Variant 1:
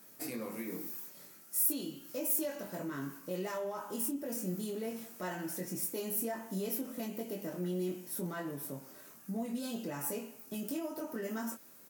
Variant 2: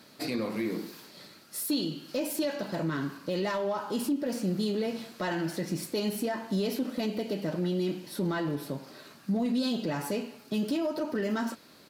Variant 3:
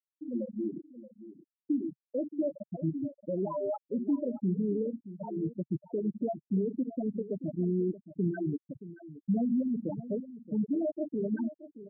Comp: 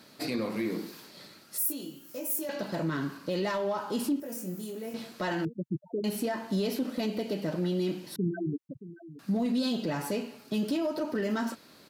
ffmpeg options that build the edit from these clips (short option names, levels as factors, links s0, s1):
-filter_complex "[0:a]asplit=2[s0][s1];[2:a]asplit=2[s2][s3];[1:a]asplit=5[s4][s5][s6][s7][s8];[s4]atrim=end=1.582[s9];[s0]atrim=start=1.578:end=2.492[s10];[s5]atrim=start=2.488:end=4.202[s11];[s1]atrim=start=4.198:end=4.942[s12];[s6]atrim=start=4.938:end=5.452[s13];[s2]atrim=start=5.448:end=6.042[s14];[s7]atrim=start=6.038:end=8.162[s15];[s3]atrim=start=8.158:end=9.192[s16];[s8]atrim=start=9.188[s17];[s9][s10]acrossfade=d=0.004:c1=hsin:c2=hsin[s18];[s18][s11]acrossfade=d=0.004:c1=hsin:c2=hsin[s19];[s19][s12]acrossfade=d=0.004:c1=hsin:c2=hsin[s20];[s20][s13]acrossfade=d=0.004:c1=hsin:c2=hsin[s21];[s21][s14]acrossfade=d=0.004:c1=hsin:c2=hsin[s22];[s22][s15]acrossfade=d=0.004:c1=hsin:c2=hsin[s23];[s23][s16]acrossfade=d=0.004:c1=hsin:c2=hsin[s24];[s24][s17]acrossfade=d=0.004:c1=hsin:c2=hsin"